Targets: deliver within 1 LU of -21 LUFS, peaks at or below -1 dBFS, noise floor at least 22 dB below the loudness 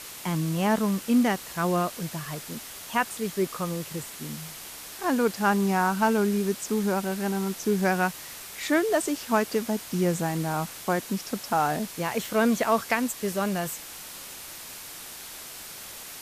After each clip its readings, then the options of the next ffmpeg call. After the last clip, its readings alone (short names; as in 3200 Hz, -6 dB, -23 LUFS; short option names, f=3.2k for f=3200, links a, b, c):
noise floor -42 dBFS; noise floor target -49 dBFS; loudness -27.0 LUFS; peak -10.0 dBFS; loudness target -21.0 LUFS
-> -af "afftdn=nr=7:nf=-42"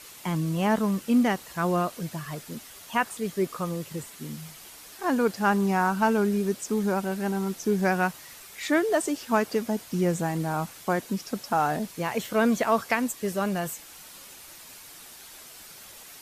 noise floor -47 dBFS; noise floor target -49 dBFS
-> -af "afftdn=nr=6:nf=-47"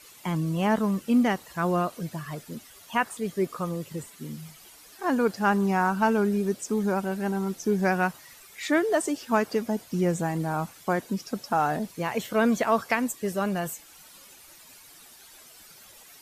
noise floor -51 dBFS; loudness -27.0 LUFS; peak -10.0 dBFS; loudness target -21.0 LUFS
-> -af "volume=6dB"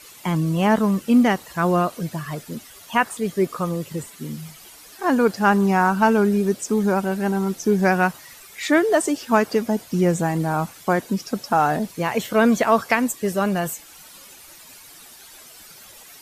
loudness -21.0 LUFS; peak -4.0 dBFS; noise floor -45 dBFS